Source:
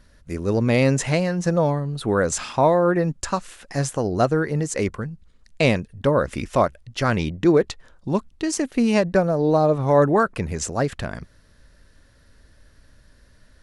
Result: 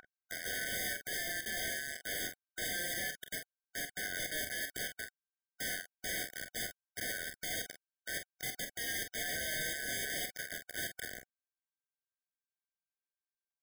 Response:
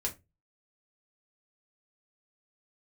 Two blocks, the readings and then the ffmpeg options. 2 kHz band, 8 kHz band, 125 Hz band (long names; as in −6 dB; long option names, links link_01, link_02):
−7.0 dB, −6.5 dB, −31.5 dB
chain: -af "acompressor=threshold=-23dB:ratio=1.5,aresample=11025,acrusher=bits=3:mix=0:aa=0.000001,aresample=44100,aeval=exprs='(tanh(35.5*val(0)+0.4)-tanh(0.4))/35.5':channel_layout=same,aeval=exprs='val(0)+0.00891*sin(2*PI*1400*n/s)':channel_layout=same,aeval=exprs='(mod(75*val(0)+1,2)-1)/75':channel_layout=same,aecho=1:1:31|45:0.251|0.398,afftfilt=real='re*eq(mod(floor(b*sr/1024/750),2),0)':imag='im*eq(mod(floor(b*sr/1024/750),2),0)':win_size=1024:overlap=0.75,volume=7.5dB"